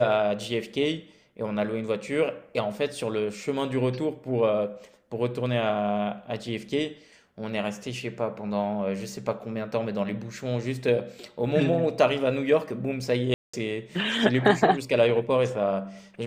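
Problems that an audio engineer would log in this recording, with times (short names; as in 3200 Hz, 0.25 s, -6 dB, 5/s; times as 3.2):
13.34–13.54 gap 0.195 s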